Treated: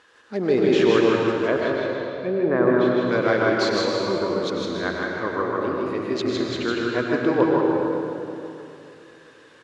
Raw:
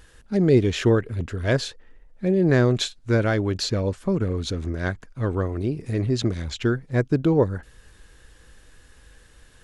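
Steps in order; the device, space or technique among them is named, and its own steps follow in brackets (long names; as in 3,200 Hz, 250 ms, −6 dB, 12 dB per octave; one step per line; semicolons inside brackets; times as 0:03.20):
0:01.40–0:03.11: treble cut that deepens with the level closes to 1,400 Hz, closed at −17.5 dBFS
station announcement (band-pass filter 340–4,800 Hz; parametric band 1,100 Hz +6.5 dB 0.48 octaves; loudspeakers that aren't time-aligned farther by 33 metres −11 dB, 54 metres −3 dB; convolution reverb RT60 2.7 s, pre-delay 112 ms, DRR 0 dB)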